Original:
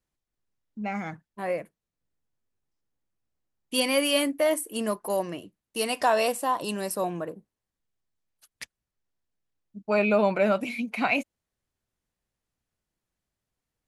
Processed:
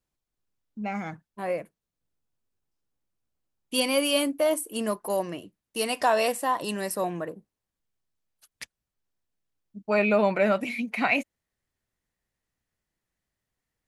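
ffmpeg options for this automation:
ffmpeg -i in.wav -af "asetnsamples=nb_out_samples=441:pad=0,asendcmd='3.86 equalizer g -9.5;4.73 equalizer g 0.5;6.24 equalizer g 7.5;7.28 equalizer g -1;9.93 equalizer g 7.5',equalizer=frequency=1900:width_type=o:width=0.28:gain=-3" out.wav

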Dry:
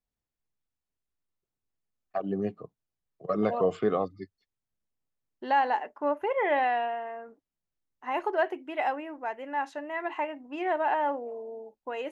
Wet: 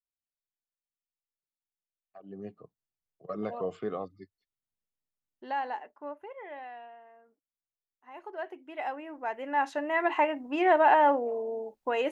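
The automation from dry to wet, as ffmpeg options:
ffmpeg -i in.wav -af "volume=15.5dB,afade=type=in:start_time=2.18:duration=0.43:silence=0.251189,afade=type=out:start_time=5.69:duration=0.69:silence=0.334965,afade=type=in:start_time=8.12:duration=0.86:silence=0.237137,afade=type=in:start_time=8.98:duration=0.98:silence=0.281838" out.wav

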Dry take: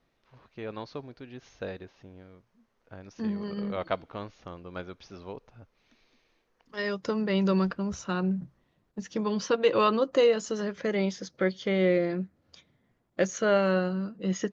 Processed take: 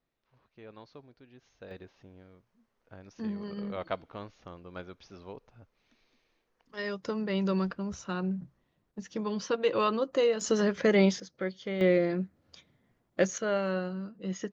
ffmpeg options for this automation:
ffmpeg -i in.wav -af "asetnsamples=nb_out_samples=441:pad=0,asendcmd='1.71 volume volume -4dB;10.41 volume volume 5dB;11.2 volume volume -7dB;11.81 volume volume 0dB;13.38 volume volume -6dB',volume=-11.5dB" out.wav

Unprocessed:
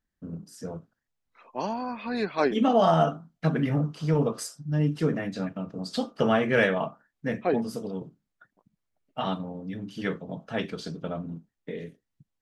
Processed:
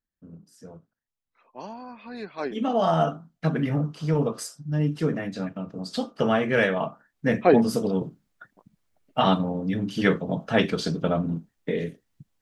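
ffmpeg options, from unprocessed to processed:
ffmpeg -i in.wav -af "volume=9dB,afade=type=in:start_time=2.37:duration=0.73:silence=0.375837,afade=type=in:start_time=6.73:duration=0.92:silence=0.375837" out.wav

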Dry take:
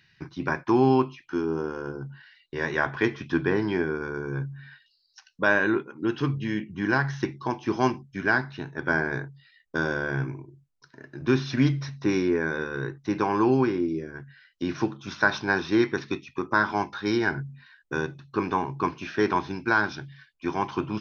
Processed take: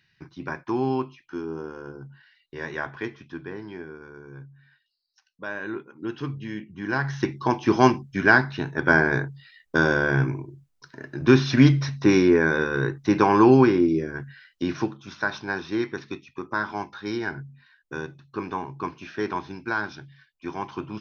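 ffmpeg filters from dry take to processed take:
ffmpeg -i in.wav -af "volume=13.5dB,afade=type=out:start_time=2.74:duration=0.62:silence=0.446684,afade=type=in:start_time=5.54:duration=0.41:silence=0.446684,afade=type=in:start_time=6.85:duration=0.72:silence=0.266073,afade=type=out:start_time=14.2:duration=0.87:silence=0.281838" out.wav

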